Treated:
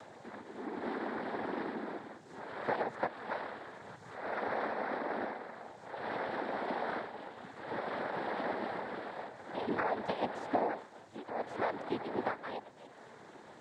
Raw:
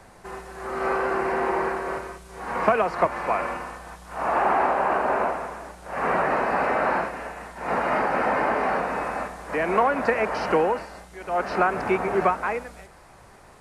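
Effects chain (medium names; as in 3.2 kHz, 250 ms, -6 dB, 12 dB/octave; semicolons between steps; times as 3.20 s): high-pass 280 Hz 12 dB/octave; tilt shelf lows +7 dB, about 670 Hz; upward compressor, threshold -27 dBFS; flange 0.17 Hz, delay 1.1 ms, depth 6.6 ms, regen +56%; noise-vocoded speech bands 6; trim -8.5 dB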